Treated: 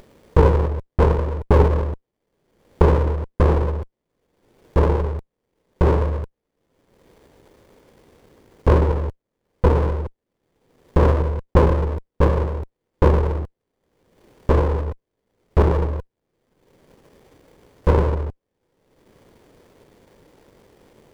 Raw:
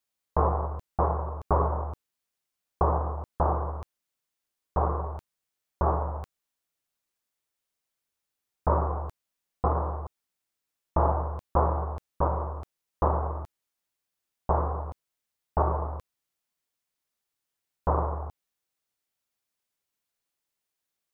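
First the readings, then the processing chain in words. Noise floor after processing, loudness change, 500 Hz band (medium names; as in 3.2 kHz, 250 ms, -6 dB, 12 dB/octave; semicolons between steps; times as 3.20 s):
-80 dBFS, +9.0 dB, +10.0 dB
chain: resonant low shelf 670 Hz +10.5 dB, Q 3; upward compressor, threshold -23 dBFS; sliding maximum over 33 samples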